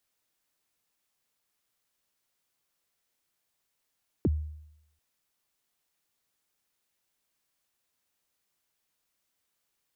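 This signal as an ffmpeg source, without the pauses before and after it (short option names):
-f lavfi -i "aevalsrc='0.106*pow(10,-3*t/0.8)*sin(2*PI*(430*0.034/log(76/430)*(exp(log(76/430)*min(t,0.034)/0.034)-1)+76*max(t-0.034,0)))':d=0.74:s=44100"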